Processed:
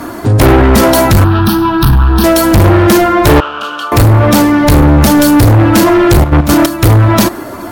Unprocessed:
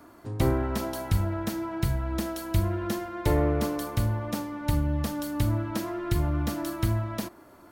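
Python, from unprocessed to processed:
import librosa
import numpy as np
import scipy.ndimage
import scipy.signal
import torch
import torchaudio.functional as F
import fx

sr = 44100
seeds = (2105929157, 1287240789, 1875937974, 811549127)

y = fx.spec_quant(x, sr, step_db=15)
y = np.clip(y, -10.0 ** (-28.5 / 20.0), 10.0 ** (-28.5 / 20.0))
y = fx.double_bandpass(y, sr, hz=2000.0, octaves=1.1, at=(3.4, 3.92))
y = fx.step_gate(y, sr, bpm=178, pattern='.x.x.xx.', floor_db=-12.0, edge_ms=4.5, at=(6.2, 6.89), fade=0.02)
y = fx.fold_sine(y, sr, drive_db=18, ceiling_db=-11.0)
y = fx.fixed_phaser(y, sr, hz=2100.0, stages=6, at=(1.24, 2.24))
y = y * 10.0 ** (7.5 / 20.0)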